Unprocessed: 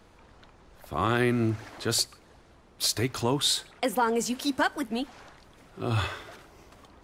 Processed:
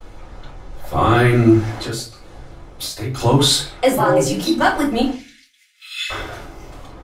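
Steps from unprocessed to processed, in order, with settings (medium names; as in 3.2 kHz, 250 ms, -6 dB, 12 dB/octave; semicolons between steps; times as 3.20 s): in parallel at 0 dB: peak limiter -19 dBFS, peak gain reduction 7 dB; on the sum: speakerphone echo 130 ms, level -17 dB; 1.73–3.20 s: compression 12:1, threshold -30 dBFS, peak gain reduction 13.5 dB; 3.95–4.59 s: ring modulator 110 Hz -> 33 Hz; 5.11–6.10 s: steep high-pass 1.9 kHz 48 dB/octave; simulated room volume 120 m³, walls furnished, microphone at 5 m; expander -42 dBFS; trim -4 dB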